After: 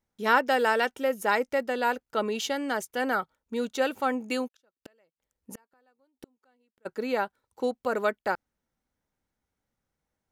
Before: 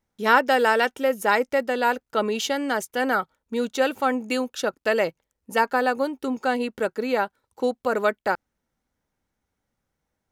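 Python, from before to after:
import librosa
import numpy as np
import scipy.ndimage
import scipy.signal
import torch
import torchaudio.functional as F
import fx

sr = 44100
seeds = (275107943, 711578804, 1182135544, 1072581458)

y = fx.gate_flip(x, sr, shuts_db=-24.0, range_db=-40, at=(4.47, 6.85), fade=0.02)
y = y * 10.0 ** (-4.5 / 20.0)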